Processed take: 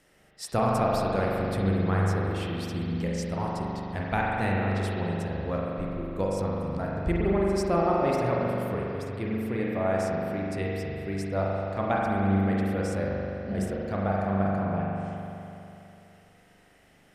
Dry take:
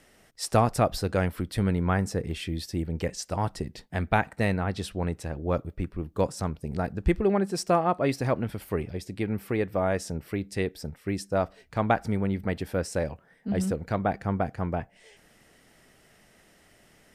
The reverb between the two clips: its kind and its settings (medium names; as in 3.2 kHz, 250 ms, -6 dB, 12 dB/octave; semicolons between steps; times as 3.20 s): spring tank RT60 3 s, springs 41 ms, chirp 30 ms, DRR -4 dB; trim -5.5 dB